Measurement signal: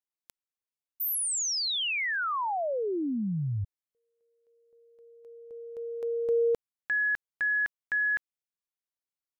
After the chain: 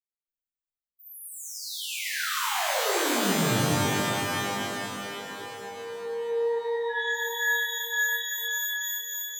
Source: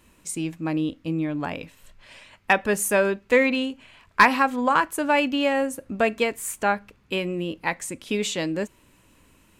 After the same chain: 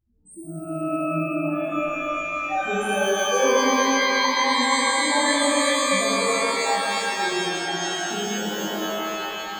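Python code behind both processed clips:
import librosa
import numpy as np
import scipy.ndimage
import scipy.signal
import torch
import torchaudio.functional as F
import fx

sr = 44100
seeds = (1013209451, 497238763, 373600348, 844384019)

y = fx.room_early_taps(x, sr, ms=(30, 63), db=(-11.5, -11.0))
y = fx.spec_topn(y, sr, count=2)
y = fx.rev_shimmer(y, sr, seeds[0], rt60_s=3.7, semitones=12, shimmer_db=-2, drr_db=-10.5)
y = y * 10.0 ** (-8.0 / 20.0)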